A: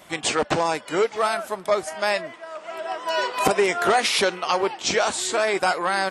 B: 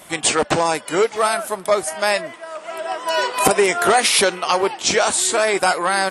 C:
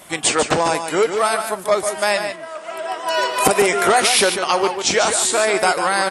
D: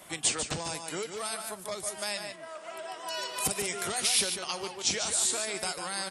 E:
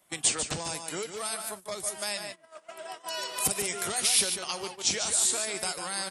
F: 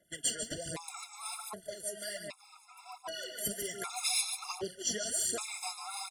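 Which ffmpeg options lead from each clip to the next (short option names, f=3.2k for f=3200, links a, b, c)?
-af "equalizer=f=10k:t=o:w=0.62:g=11,volume=4dB"
-af "aecho=1:1:146:0.398"
-filter_complex "[0:a]acrossover=split=180|3000[a][b][c];[b]acompressor=threshold=-32dB:ratio=3[d];[a][d][c]amix=inputs=3:normalize=0,volume=-8dB"
-af "agate=range=-17dB:threshold=-40dB:ratio=16:detection=peak,highshelf=f=9k:g=6"
-af "aecho=1:1:373|746|1119|1492|1865:0.1|0.057|0.0325|0.0185|0.0106,aphaser=in_gain=1:out_gain=1:delay=4.9:decay=0.63:speed=1.3:type=sinusoidal,afftfilt=real='re*gt(sin(2*PI*0.65*pts/sr)*(1-2*mod(floor(b*sr/1024/690),2)),0)':imag='im*gt(sin(2*PI*0.65*pts/sr)*(1-2*mod(floor(b*sr/1024/690),2)),0)':win_size=1024:overlap=0.75,volume=-6.5dB"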